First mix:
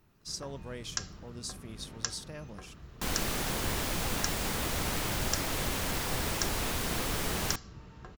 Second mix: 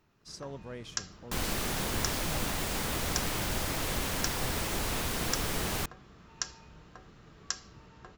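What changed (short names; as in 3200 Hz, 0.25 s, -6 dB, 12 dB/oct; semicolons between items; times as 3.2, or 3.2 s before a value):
speech: add high shelf 3500 Hz -11 dB; first sound: add low shelf 210 Hz -7.5 dB; second sound: entry -1.70 s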